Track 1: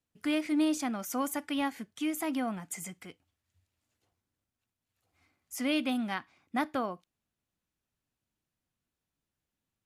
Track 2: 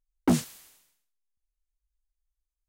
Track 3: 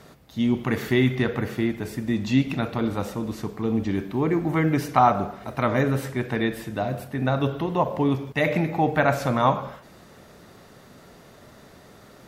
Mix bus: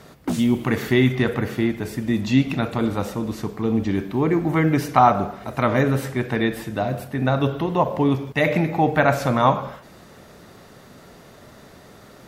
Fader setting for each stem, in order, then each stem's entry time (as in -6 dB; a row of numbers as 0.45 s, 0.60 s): -17.5 dB, -2.5 dB, +3.0 dB; 0.00 s, 0.00 s, 0.00 s